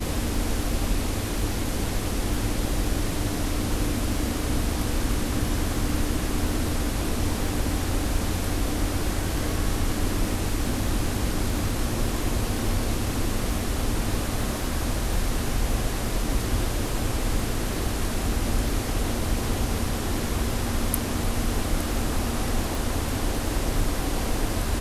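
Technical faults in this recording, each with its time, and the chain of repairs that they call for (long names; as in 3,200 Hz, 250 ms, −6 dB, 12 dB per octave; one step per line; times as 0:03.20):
surface crackle 28 per second −32 dBFS
0:22.75: click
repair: click removal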